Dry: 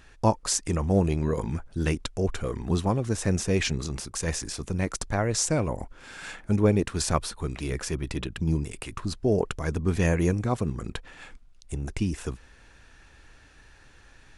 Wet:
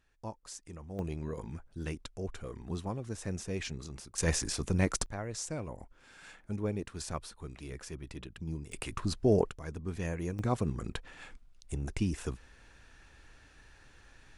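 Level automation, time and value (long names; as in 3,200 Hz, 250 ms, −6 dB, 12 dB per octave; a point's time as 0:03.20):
−20 dB
from 0:00.99 −12 dB
from 0:04.18 −0.5 dB
from 0:05.06 −13 dB
from 0:08.72 −2 dB
from 0:09.50 −12.5 dB
from 0:10.39 −4 dB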